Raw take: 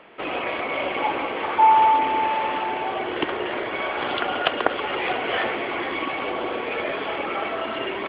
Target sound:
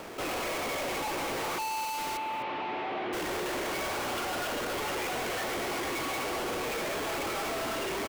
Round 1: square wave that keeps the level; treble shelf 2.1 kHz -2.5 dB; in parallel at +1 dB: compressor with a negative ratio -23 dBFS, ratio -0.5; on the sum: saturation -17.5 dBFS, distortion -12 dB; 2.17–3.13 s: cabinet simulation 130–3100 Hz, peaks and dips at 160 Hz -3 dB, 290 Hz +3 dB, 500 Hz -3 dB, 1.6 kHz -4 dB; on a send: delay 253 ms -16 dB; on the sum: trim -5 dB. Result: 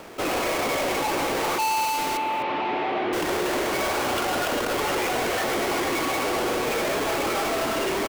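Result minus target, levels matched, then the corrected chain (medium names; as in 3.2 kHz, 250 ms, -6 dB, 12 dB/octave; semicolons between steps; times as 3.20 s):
saturation: distortion -5 dB
square wave that keeps the level; treble shelf 2.1 kHz -2.5 dB; in parallel at +1 dB: compressor with a negative ratio -23 dBFS, ratio -0.5; on the sum: saturation -27.5 dBFS, distortion -7 dB; 2.17–3.13 s: cabinet simulation 130–3100 Hz, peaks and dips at 160 Hz -3 dB, 290 Hz +3 dB, 500 Hz -3 dB, 1.6 kHz -4 dB; on a send: delay 253 ms -16 dB; on the sum: trim -5 dB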